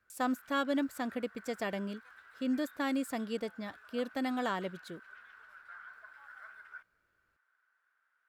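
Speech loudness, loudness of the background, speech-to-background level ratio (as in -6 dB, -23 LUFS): -35.5 LUFS, -53.5 LUFS, 18.0 dB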